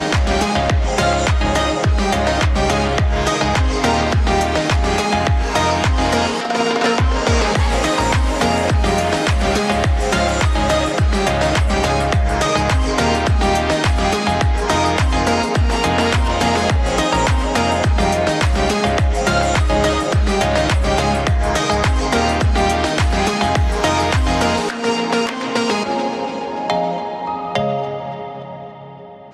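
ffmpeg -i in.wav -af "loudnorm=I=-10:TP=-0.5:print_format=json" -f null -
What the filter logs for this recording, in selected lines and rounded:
"input_i" : "-17.1",
"input_tp" : "-4.4",
"input_lra" : "6.5",
"input_thresh" : "-27.4",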